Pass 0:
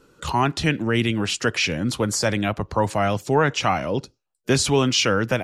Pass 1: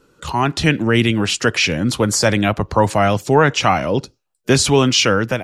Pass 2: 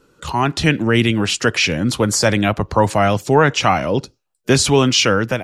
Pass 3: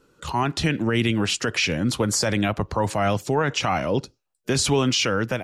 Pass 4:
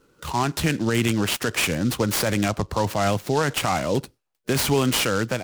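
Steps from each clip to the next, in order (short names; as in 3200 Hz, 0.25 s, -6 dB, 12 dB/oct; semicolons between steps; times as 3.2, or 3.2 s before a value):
AGC
nothing audible
limiter -7.5 dBFS, peak gain reduction 6.5 dB; gain -4.5 dB
noise-modulated delay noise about 4500 Hz, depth 0.037 ms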